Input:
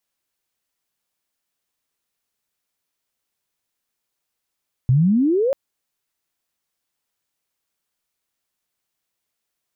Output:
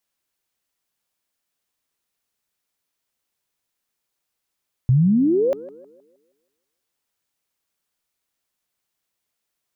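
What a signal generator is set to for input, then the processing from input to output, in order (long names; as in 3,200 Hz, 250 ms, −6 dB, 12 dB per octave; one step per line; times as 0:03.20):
glide logarithmic 120 Hz → 570 Hz −11.5 dBFS → −16 dBFS 0.64 s
tape delay 159 ms, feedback 48%, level −15.5 dB, low-pass 1,000 Hz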